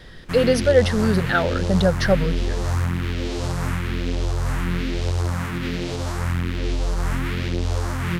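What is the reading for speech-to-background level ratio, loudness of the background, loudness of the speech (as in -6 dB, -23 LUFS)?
5.0 dB, -25.5 LUFS, -20.5 LUFS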